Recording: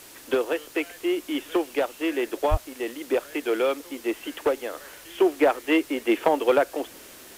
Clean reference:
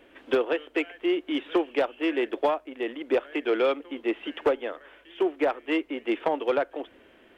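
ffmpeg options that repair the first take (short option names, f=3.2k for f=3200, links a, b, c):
-filter_complex "[0:a]asplit=3[a][b][c];[a]afade=t=out:st=2.5:d=0.02[d];[b]highpass=f=140:w=0.5412,highpass=f=140:w=1.3066,afade=t=in:st=2.5:d=0.02,afade=t=out:st=2.62:d=0.02[e];[c]afade=t=in:st=2.62:d=0.02[f];[d][e][f]amix=inputs=3:normalize=0,afwtdn=0.005,asetnsamples=n=441:p=0,asendcmd='4.73 volume volume -5dB',volume=0dB"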